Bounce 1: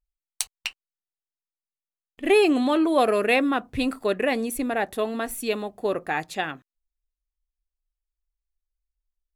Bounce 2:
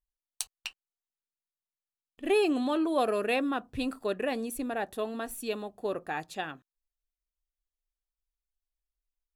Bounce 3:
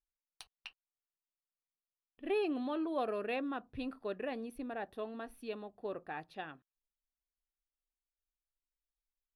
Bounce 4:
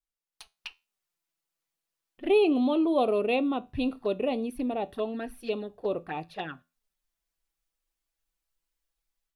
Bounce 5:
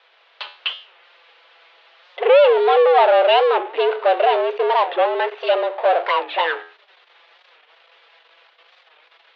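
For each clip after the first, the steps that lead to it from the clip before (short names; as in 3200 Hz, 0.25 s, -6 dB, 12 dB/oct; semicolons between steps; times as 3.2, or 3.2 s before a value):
bell 2100 Hz -8.5 dB 0.24 oct; gain -7 dB
running mean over 6 samples; gain -8 dB
AGC gain up to 10 dB; envelope flanger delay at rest 6.1 ms, full sweep at -28 dBFS; resonator 83 Hz, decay 0.28 s, harmonics all, mix 40%; gain +5 dB
power-law curve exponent 0.5; mistuned SSB +170 Hz 270–3500 Hz; record warp 45 rpm, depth 160 cents; gain +7.5 dB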